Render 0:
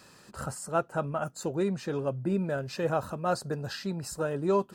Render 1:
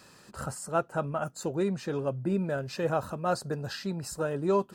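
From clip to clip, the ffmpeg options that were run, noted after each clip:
-af anull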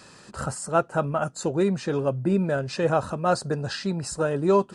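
-af "aresample=22050,aresample=44100,volume=6dB"

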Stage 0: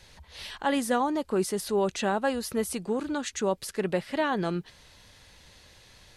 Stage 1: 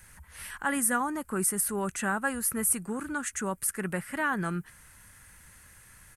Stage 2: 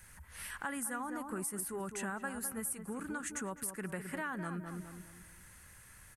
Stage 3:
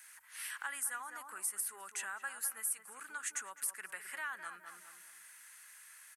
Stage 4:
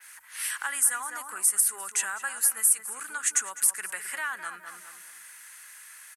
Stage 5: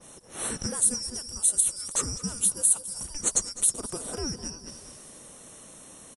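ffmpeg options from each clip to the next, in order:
-af "firequalizer=gain_entry='entry(170,0);entry(420,-9);entry(630,-9);entry(1400,6);entry(3800,-15);entry(8800,12)':delay=0.05:min_phase=1"
-filter_complex "[0:a]asplit=2[a][b];[b]adelay=207,lowpass=f=1.3k:p=1,volume=-7.5dB,asplit=2[c][d];[d]adelay=207,lowpass=f=1.3k:p=1,volume=0.41,asplit=2[e][f];[f]adelay=207,lowpass=f=1.3k:p=1,volume=0.41,asplit=2[g][h];[h]adelay=207,lowpass=f=1.3k:p=1,volume=0.41,asplit=2[i][j];[j]adelay=207,lowpass=f=1.3k:p=1,volume=0.41[k];[a][c][e][g][i][k]amix=inputs=6:normalize=0,acompressor=threshold=-34dB:ratio=4,volume=-3dB"
-af "highpass=1.4k,volume=2.5dB"
-af "adynamicequalizer=threshold=0.00316:dfrequency=8100:dqfactor=0.73:tfrequency=8100:tqfactor=0.73:attack=5:release=100:ratio=0.375:range=4:mode=boostabove:tftype=bell,aecho=1:1:203|406|609:0.1|0.037|0.0137,volume=8.5dB"
-af "afftfilt=real='real(if(lt(b,272),68*(eq(floor(b/68),0)*1+eq(floor(b/68),1)*2+eq(floor(b/68),2)*3+eq(floor(b/68),3)*0)+mod(b,68),b),0)':imag='imag(if(lt(b,272),68*(eq(floor(b/68),0)*1+eq(floor(b/68),1)*2+eq(floor(b/68),2)*3+eq(floor(b/68),3)*0)+mod(b,68),b),0)':win_size=2048:overlap=0.75,aecho=1:1:320|640|960:0.106|0.035|0.0115,volume=1dB" -ar 24000 -c:a libmp3lame -b:a 160k

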